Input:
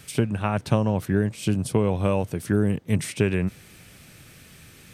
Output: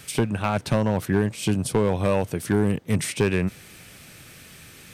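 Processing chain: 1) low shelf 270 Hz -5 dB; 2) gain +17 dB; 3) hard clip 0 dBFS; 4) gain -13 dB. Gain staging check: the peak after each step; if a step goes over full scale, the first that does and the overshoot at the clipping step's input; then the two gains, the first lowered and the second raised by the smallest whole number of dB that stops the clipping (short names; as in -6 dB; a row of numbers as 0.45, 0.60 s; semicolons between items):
-7.5, +9.5, 0.0, -13.0 dBFS; step 2, 9.5 dB; step 2 +7 dB, step 4 -3 dB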